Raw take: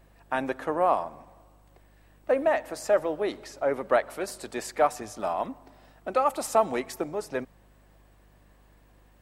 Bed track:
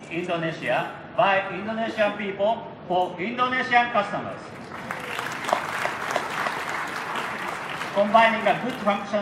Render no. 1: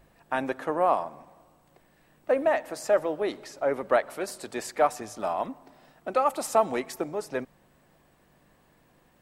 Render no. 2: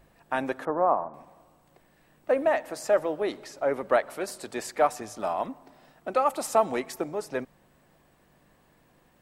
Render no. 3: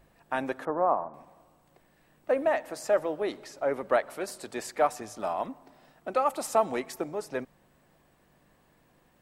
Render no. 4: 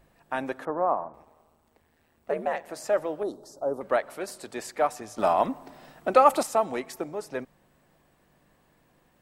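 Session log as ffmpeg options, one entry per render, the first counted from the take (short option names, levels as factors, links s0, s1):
-af "bandreject=f=50:t=h:w=4,bandreject=f=100:t=h:w=4"
-filter_complex "[0:a]asettb=1/sr,asplit=3[s0][s1][s2];[s0]atrim=end=0.654[s3];[s1]atrim=start=0.65:end=1.14,asetpts=PTS-STARTPTS,afade=t=in:d=0.004:c=qsin,afade=t=out:st=0.486:d=0.004:c=qsin,lowpass=f=1500:w=0.5412,lowpass=f=1500:w=1.3066[s4];[s2]atrim=start=1.136[s5];[s3][s4]acrossfade=d=0.004:c1=hsin:c2=qsin[s6];[s6][s5]acrossfade=d=0.004:c1=qsin:c2=hsin"
-af "volume=0.794"
-filter_complex "[0:a]asettb=1/sr,asplit=3[s0][s1][s2];[s0]atrim=end=1.124[s3];[s1]atrim=start=1.12:end=2.69,asetpts=PTS-STARTPTS,afade=t=in:d=0.004:c=qsin,afade=t=out:st=1.566:d=0.004:c=qsin,aeval=exprs='val(0)*sin(2*PI*79*n/s)':c=same[s4];[s2]atrim=start=2.686[s5];[s3][s4]acrossfade=d=0.004:c1=hsin:c2=qsin[s6];[s6][s5]acrossfade=d=0.004:c1=qsin:c2=hsin,asettb=1/sr,asplit=3[s7][s8][s9];[s7]atrim=end=3.234[s10];[s8]atrim=start=3.23:end=3.81,asetpts=PTS-STARTPTS,afade=t=in:d=0.004:c=qsin,afade=t=out:st=0.576:d=0.004:c=qsin,asuperstop=centerf=2300:order=4:qfactor=0.53[s11];[s9]atrim=start=3.806[s12];[s10][s11]acrossfade=d=0.004:c1=hsin:c2=qsin[s13];[s13][s12]acrossfade=d=0.004:c1=qsin:c2=hsin,asplit=3[s14][s15][s16];[s14]atrim=end=5.182[s17];[s15]atrim=start=5.178:end=6.432,asetpts=PTS-STARTPTS,volume=2.66[s18];[s16]atrim=start=6.428[s19];[s17][s18]acrossfade=d=0.004:c1=hsin:c2=hsin[s20];[s20][s19]acrossfade=d=0.004:c1=hsin:c2=hsin"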